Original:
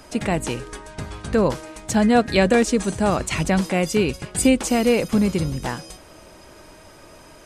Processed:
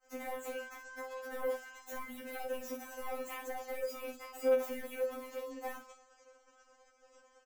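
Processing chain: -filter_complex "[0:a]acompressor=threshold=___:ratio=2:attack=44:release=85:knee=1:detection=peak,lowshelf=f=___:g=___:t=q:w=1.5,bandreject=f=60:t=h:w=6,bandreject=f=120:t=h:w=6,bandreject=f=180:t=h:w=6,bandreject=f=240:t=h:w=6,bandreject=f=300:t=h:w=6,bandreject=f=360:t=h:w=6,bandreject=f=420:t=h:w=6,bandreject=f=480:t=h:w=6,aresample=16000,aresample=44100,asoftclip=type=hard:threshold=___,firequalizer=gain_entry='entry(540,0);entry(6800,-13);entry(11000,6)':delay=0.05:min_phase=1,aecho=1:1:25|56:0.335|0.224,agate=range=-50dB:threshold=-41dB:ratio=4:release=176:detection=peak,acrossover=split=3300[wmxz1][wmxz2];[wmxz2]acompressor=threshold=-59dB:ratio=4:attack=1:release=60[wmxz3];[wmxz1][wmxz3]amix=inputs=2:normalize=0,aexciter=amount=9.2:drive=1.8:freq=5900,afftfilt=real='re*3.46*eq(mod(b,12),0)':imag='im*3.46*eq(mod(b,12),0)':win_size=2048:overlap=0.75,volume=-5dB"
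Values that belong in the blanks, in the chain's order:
-29dB, 340, -11.5, -28.5dB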